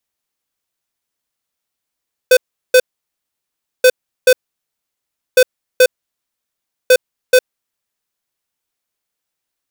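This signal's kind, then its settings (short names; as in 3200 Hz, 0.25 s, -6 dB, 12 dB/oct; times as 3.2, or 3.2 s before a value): beep pattern square 507 Hz, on 0.06 s, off 0.37 s, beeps 2, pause 1.04 s, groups 4, -7 dBFS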